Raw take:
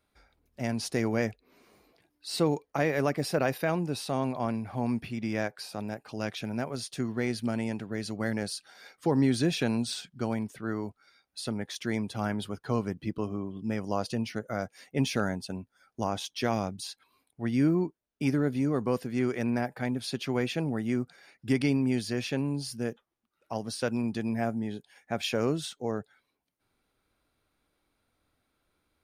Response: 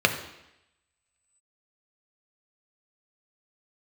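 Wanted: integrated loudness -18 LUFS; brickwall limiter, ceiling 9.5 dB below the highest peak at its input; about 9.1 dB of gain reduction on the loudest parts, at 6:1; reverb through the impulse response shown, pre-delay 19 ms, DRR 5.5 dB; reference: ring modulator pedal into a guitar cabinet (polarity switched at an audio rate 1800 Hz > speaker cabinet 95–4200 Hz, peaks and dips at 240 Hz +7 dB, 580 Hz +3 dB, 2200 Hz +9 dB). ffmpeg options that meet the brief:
-filter_complex "[0:a]acompressor=threshold=-30dB:ratio=6,alimiter=level_in=4dB:limit=-24dB:level=0:latency=1,volume=-4dB,asplit=2[a][b];[1:a]atrim=start_sample=2205,adelay=19[c];[b][c]afir=irnorm=-1:irlink=0,volume=-22.5dB[d];[a][d]amix=inputs=2:normalize=0,aeval=exprs='val(0)*sgn(sin(2*PI*1800*n/s))':c=same,highpass=95,equalizer=f=240:t=q:w=4:g=7,equalizer=f=580:t=q:w=4:g=3,equalizer=f=2.2k:t=q:w=4:g=9,lowpass=f=4.2k:w=0.5412,lowpass=f=4.2k:w=1.3066,volume=14dB"

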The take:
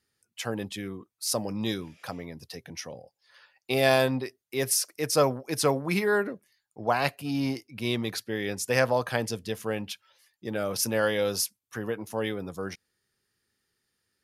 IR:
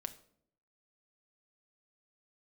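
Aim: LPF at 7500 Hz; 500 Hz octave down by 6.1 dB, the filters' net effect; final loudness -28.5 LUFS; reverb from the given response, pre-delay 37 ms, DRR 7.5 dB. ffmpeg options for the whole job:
-filter_complex "[0:a]lowpass=7.5k,equalizer=f=500:t=o:g=-7.5,asplit=2[a][b];[1:a]atrim=start_sample=2205,adelay=37[c];[b][c]afir=irnorm=-1:irlink=0,volume=-5dB[d];[a][d]amix=inputs=2:normalize=0,volume=2.5dB"

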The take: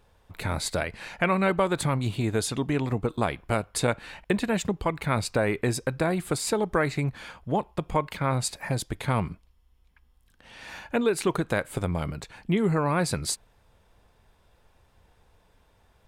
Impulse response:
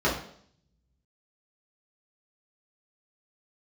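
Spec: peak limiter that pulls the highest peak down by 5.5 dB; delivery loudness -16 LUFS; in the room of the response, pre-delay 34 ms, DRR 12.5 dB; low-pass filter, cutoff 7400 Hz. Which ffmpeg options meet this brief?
-filter_complex "[0:a]lowpass=7.4k,alimiter=limit=-16dB:level=0:latency=1,asplit=2[a][b];[1:a]atrim=start_sample=2205,adelay=34[c];[b][c]afir=irnorm=-1:irlink=0,volume=-27dB[d];[a][d]amix=inputs=2:normalize=0,volume=13dB"

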